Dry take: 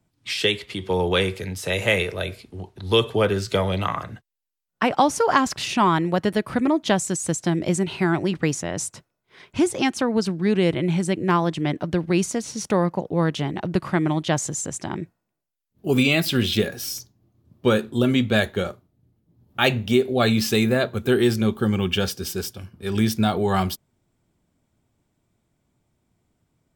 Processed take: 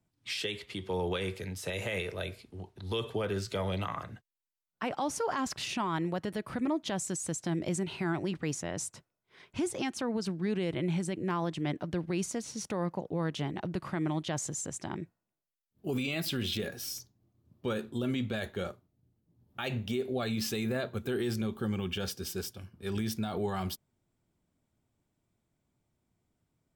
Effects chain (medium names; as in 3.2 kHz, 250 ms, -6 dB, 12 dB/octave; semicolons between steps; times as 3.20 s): peak limiter -15 dBFS, peak gain reduction 10 dB; trim -8.5 dB